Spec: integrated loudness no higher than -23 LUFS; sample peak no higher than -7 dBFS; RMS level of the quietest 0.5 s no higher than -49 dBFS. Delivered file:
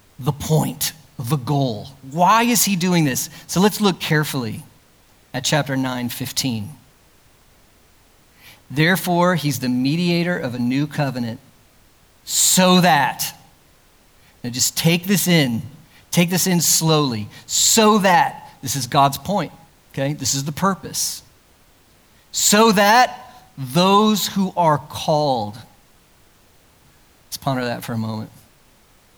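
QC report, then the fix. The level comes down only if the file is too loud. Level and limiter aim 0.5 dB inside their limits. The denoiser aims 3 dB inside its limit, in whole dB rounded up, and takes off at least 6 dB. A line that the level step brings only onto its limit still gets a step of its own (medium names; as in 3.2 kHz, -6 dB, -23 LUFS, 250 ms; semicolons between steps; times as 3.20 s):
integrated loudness -18.0 LUFS: fail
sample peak -3.5 dBFS: fail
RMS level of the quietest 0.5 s -53 dBFS: pass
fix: trim -5.5 dB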